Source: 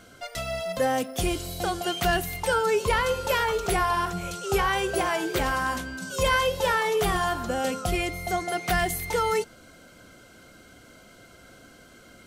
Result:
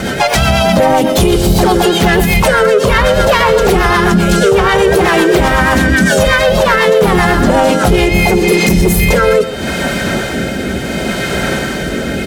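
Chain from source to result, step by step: high-pass 40 Hz 24 dB/octave; hum notches 50/100/150/200/250 Hz; spectral replace 8.36–8.95 s, 500–5000 Hz after; tilt EQ -1.5 dB/octave; comb 5.2 ms, depth 52%; compression 5:1, threshold -35 dBFS, peak gain reduction 17.5 dB; whistle 3.1 kHz -62 dBFS; rotary cabinet horn 8 Hz, later 0.7 Hz, at 7.69 s; saturation -34 dBFS, distortion -15 dB; harmony voices +3 st -4 dB, +7 st -13 dB; on a send: multi-tap echo 117/132 ms -16.5/-17.5 dB; on the sum: loudness maximiser +34 dB; trim -1 dB

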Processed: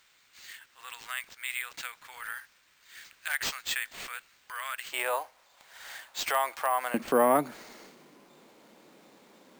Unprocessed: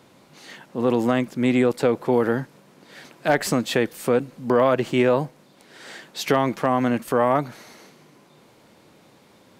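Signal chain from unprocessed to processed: high-pass 1.5 kHz 24 dB/octave, from 4.92 s 720 Hz, from 6.94 s 190 Hz; careless resampling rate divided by 4×, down none, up hold; trim -3 dB

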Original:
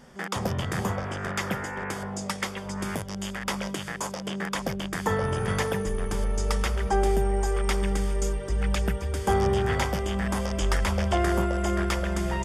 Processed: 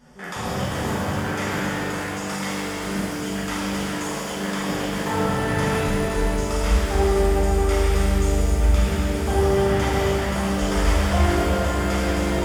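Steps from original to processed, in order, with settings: pitch-shifted reverb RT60 3.1 s, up +7 st, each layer -8 dB, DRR -10 dB; trim -6.5 dB

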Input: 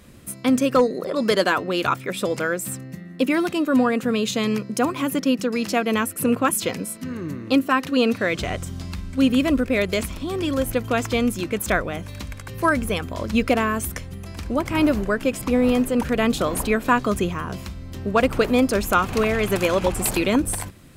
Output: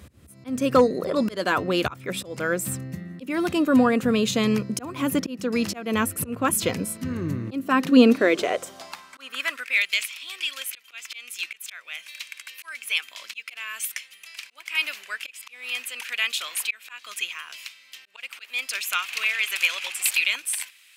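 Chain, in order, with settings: slow attack 301 ms; high-pass sweep 72 Hz -> 2.5 kHz, 7.09–9.81 s

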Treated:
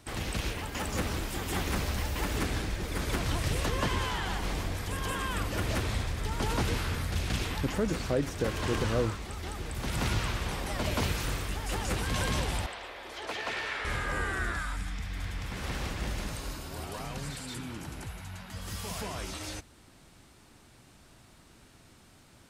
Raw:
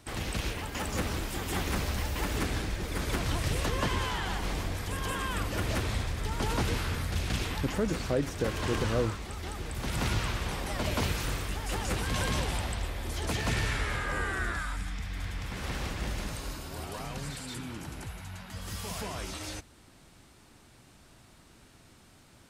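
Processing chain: 12.66–13.85 s: three-band isolator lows -24 dB, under 360 Hz, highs -14 dB, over 4.6 kHz

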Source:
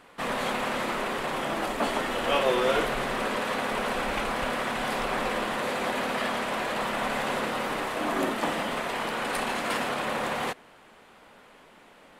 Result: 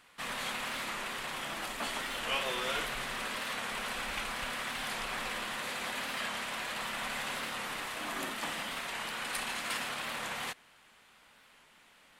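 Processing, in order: amplifier tone stack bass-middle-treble 5-5-5; warped record 45 rpm, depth 100 cents; trim +5 dB

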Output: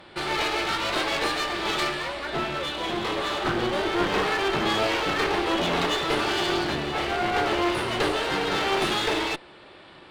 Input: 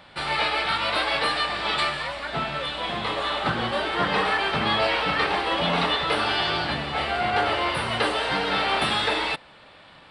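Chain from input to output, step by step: peaking EQ 360 Hz +14 dB 0.42 oct; one-sided clip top -29.5 dBFS

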